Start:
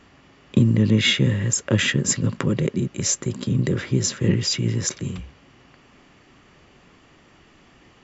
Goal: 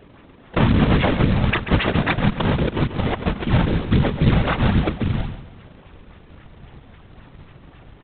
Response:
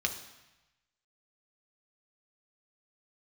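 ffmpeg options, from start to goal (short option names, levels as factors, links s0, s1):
-filter_complex "[0:a]asubboost=boost=6:cutoff=91,asplit=2[s0][s1];[s1]acompressor=threshold=0.0562:ratio=16,volume=1.12[s2];[s0][s2]amix=inputs=2:normalize=0,acrusher=samples=36:mix=1:aa=0.000001:lfo=1:lforange=57.6:lforate=3.7,afftfilt=real='hypot(re,im)*cos(2*PI*random(0))':imag='hypot(re,im)*sin(2*PI*random(1))':win_size=512:overlap=0.75,aresample=8000,acrusher=bits=4:mode=log:mix=0:aa=0.000001,aresample=44100,aecho=1:1:137|274|411|548:0.282|0.0986|0.0345|0.0121,volume=1.78"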